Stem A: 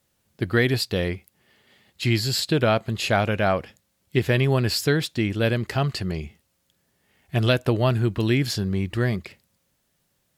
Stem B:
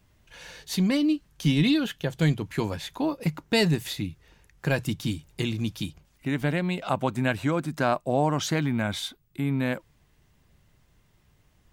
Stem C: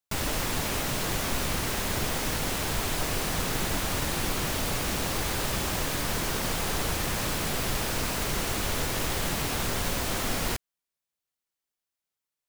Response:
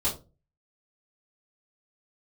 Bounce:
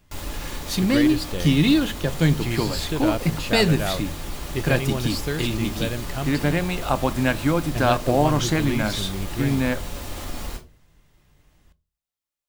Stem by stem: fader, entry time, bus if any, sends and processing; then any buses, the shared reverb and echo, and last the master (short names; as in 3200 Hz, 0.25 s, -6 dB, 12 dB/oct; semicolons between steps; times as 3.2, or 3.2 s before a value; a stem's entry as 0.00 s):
-6.5 dB, 0.40 s, no send, dry
+3.0 dB, 0.00 s, send -20 dB, dry
-4.5 dB, 0.00 s, send -10 dB, limiter -21 dBFS, peak gain reduction 5.5 dB; auto duck -7 dB, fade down 0.20 s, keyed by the second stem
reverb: on, RT60 0.30 s, pre-delay 3 ms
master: dry